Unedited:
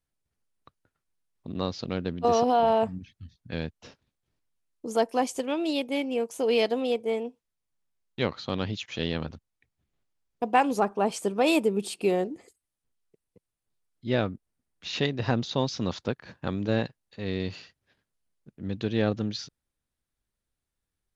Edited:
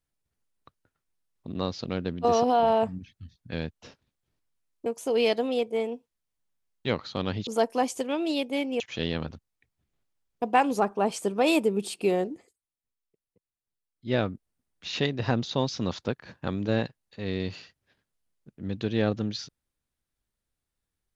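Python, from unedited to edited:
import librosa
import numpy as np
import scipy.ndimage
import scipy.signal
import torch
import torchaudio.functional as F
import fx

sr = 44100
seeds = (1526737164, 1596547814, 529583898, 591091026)

y = fx.edit(x, sr, fx.move(start_s=4.86, length_s=1.33, to_s=8.8),
    fx.fade_down_up(start_s=12.32, length_s=1.82, db=-10.0, fade_s=0.16), tone=tone)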